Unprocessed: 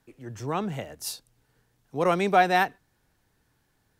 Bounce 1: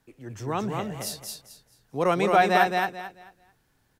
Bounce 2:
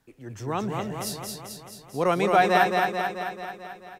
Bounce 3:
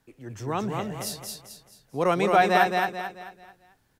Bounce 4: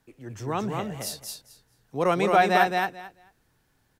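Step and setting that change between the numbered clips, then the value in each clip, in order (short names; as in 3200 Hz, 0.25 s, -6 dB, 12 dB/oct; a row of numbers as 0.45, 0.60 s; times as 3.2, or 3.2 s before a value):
feedback echo, feedback: 25, 62, 38, 16%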